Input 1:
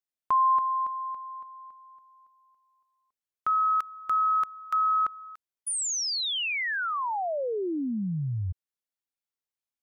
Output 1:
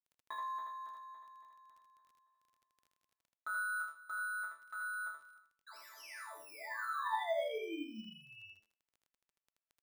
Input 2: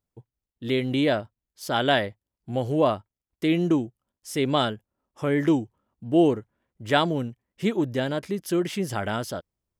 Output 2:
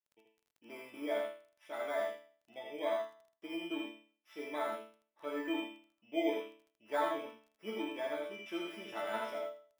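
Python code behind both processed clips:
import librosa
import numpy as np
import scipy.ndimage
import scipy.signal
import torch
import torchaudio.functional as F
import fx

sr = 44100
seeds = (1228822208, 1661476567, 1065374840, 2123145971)

p1 = fx.bit_reversed(x, sr, seeds[0], block=16)
p2 = scipy.signal.sosfilt(scipy.signal.butter(2, 500.0, 'highpass', fs=sr, output='sos'), p1)
p3 = fx.rider(p2, sr, range_db=4, speed_s=2.0)
p4 = scipy.signal.savgol_filter(p3, 25, 4, mode='constant')
p5 = fx.resonator_bank(p4, sr, root=57, chord='sus4', decay_s=0.43)
p6 = fx.dmg_crackle(p5, sr, seeds[1], per_s=12.0, level_db=-63.0)
p7 = p6 + fx.echo_single(p6, sr, ms=80, db=-3.5, dry=0)
y = p7 * librosa.db_to_amplitude(9.5)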